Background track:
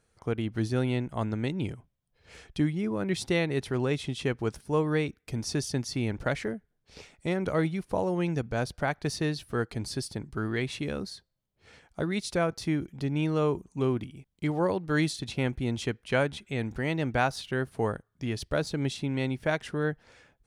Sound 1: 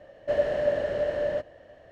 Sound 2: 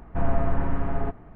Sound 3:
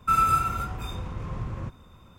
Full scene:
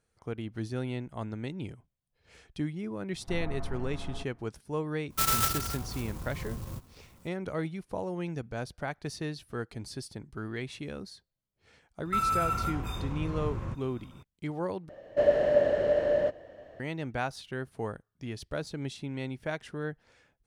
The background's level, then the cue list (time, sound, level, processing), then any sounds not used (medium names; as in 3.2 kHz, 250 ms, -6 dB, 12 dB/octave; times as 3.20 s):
background track -6.5 dB
3.13 s: add 2 -13.5 dB
5.10 s: add 3 -5.5 dB + sampling jitter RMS 0.12 ms
12.05 s: add 3 -1.5 dB + peak limiter -19.5 dBFS
14.89 s: replace with 1 -1.5 dB + peaking EQ 330 Hz +4.5 dB 2.5 oct